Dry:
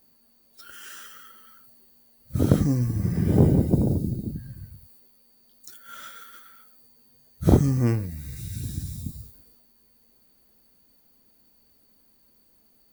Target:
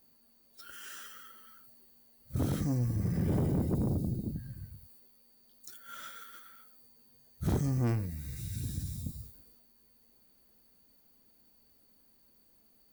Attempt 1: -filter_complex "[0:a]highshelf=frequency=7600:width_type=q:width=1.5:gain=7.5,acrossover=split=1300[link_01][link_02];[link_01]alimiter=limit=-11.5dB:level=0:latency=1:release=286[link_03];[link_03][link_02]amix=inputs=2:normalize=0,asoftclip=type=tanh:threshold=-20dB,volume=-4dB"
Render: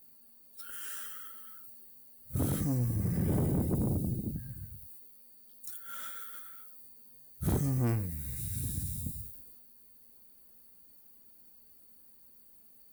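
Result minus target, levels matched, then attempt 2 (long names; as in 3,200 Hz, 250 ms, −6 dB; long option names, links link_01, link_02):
8,000 Hz band +6.0 dB
-filter_complex "[0:a]acrossover=split=1300[link_01][link_02];[link_01]alimiter=limit=-11.5dB:level=0:latency=1:release=286[link_03];[link_03][link_02]amix=inputs=2:normalize=0,asoftclip=type=tanh:threshold=-20dB,volume=-4dB"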